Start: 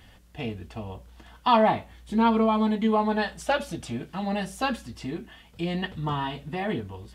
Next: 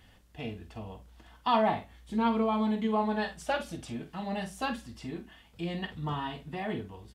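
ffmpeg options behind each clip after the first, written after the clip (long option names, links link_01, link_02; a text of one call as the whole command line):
ffmpeg -i in.wav -filter_complex "[0:a]asplit=2[link_01][link_02];[link_02]adelay=47,volume=-10dB[link_03];[link_01][link_03]amix=inputs=2:normalize=0,volume=-6dB" out.wav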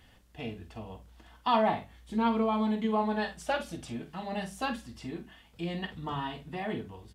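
ffmpeg -i in.wav -af "bandreject=frequency=50:width_type=h:width=6,bandreject=frequency=100:width_type=h:width=6,bandreject=frequency=150:width_type=h:width=6,bandreject=frequency=200:width_type=h:width=6" out.wav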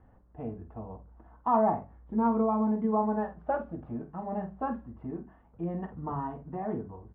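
ffmpeg -i in.wav -af "lowpass=frequency=1200:width=0.5412,lowpass=frequency=1200:width=1.3066,volume=1.5dB" out.wav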